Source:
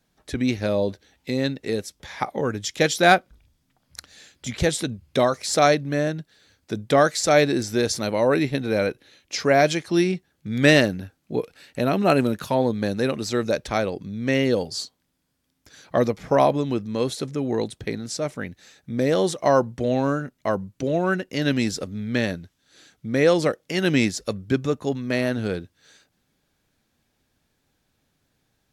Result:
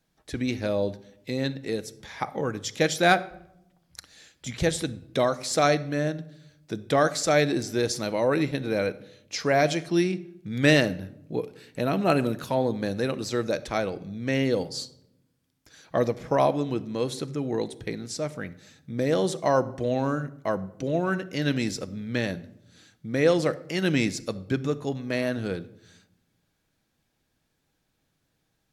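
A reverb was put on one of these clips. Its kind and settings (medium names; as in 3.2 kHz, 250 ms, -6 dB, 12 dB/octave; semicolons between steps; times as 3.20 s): simulated room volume 2300 m³, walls furnished, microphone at 0.64 m; trim -4 dB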